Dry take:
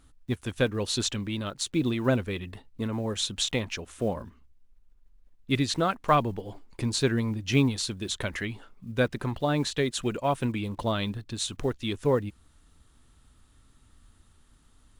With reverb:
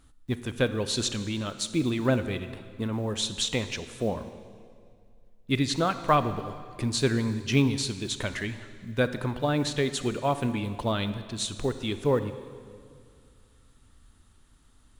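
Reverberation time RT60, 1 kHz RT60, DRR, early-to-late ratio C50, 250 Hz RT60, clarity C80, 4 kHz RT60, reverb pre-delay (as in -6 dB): 2.2 s, 2.1 s, 11.0 dB, 11.5 dB, 2.3 s, 12.5 dB, 1.8 s, 27 ms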